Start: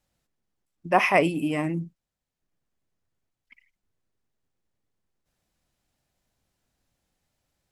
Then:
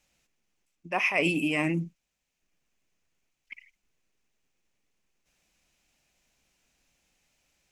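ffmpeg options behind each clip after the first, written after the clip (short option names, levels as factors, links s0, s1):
-af "equalizer=f=100:t=o:w=0.67:g=-10,equalizer=f=2500:t=o:w=0.67:g=11,equalizer=f=6300:t=o:w=0.67:g=8,areverse,acompressor=threshold=0.0631:ratio=16,areverse,volume=1.26"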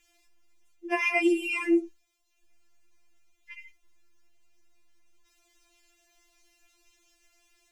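-af "acompressor=threshold=0.0398:ratio=5,afftfilt=real='re*4*eq(mod(b,16),0)':imag='im*4*eq(mod(b,16),0)':win_size=2048:overlap=0.75,volume=2.51"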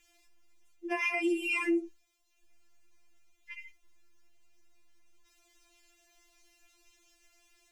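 -af "alimiter=limit=0.0794:level=0:latency=1:release=194"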